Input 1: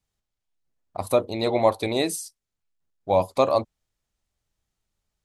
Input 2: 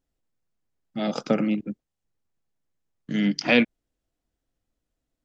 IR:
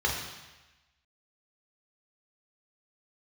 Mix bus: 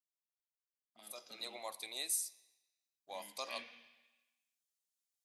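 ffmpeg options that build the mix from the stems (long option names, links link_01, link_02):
-filter_complex "[0:a]highpass=frequency=290:poles=1,volume=-4.5dB,afade=type=in:start_time=1.03:duration=0.45:silence=0.251189,asplit=2[link_01][link_02];[link_02]volume=-24dB[link_03];[1:a]volume=-14dB,asplit=2[link_04][link_05];[link_05]volume=-14.5dB[link_06];[2:a]atrim=start_sample=2205[link_07];[link_03][link_06]amix=inputs=2:normalize=0[link_08];[link_08][link_07]afir=irnorm=-1:irlink=0[link_09];[link_01][link_04][link_09]amix=inputs=3:normalize=0,aderivative"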